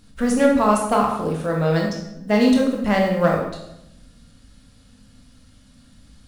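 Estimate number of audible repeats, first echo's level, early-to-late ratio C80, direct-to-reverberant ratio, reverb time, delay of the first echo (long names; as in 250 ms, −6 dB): no echo audible, no echo audible, 7.5 dB, −1.0 dB, 0.85 s, no echo audible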